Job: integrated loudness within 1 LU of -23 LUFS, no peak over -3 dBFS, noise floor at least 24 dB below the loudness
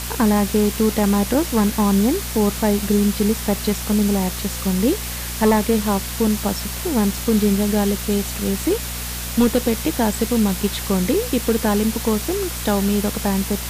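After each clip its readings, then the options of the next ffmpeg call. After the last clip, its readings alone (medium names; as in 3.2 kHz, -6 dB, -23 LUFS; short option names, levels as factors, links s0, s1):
hum 60 Hz; highest harmonic 240 Hz; hum level -28 dBFS; noise floor -28 dBFS; noise floor target -44 dBFS; loudness -19.5 LUFS; peak level -6.5 dBFS; loudness target -23.0 LUFS
-> -af "bandreject=f=60:t=h:w=4,bandreject=f=120:t=h:w=4,bandreject=f=180:t=h:w=4,bandreject=f=240:t=h:w=4"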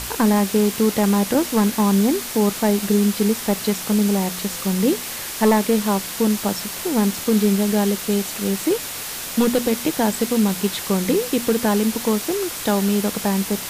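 hum not found; noise floor -30 dBFS; noise floor target -44 dBFS
-> -af "afftdn=nr=14:nf=-30"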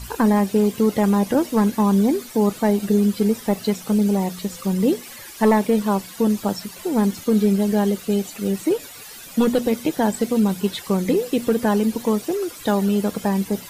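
noise floor -39 dBFS; noise floor target -45 dBFS
-> -af "afftdn=nr=6:nf=-39"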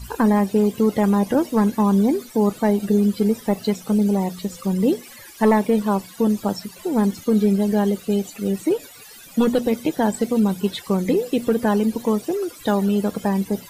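noise floor -43 dBFS; noise floor target -45 dBFS
-> -af "afftdn=nr=6:nf=-43"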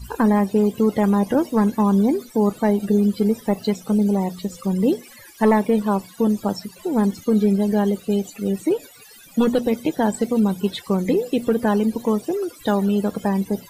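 noise floor -46 dBFS; loudness -20.5 LUFS; peak level -8.0 dBFS; loudness target -23.0 LUFS
-> -af "volume=0.75"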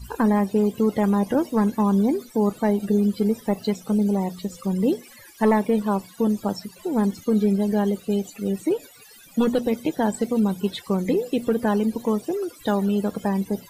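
loudness -23.0 LUFS; peak level -10.5 dBFS; noise floor -48 dBFS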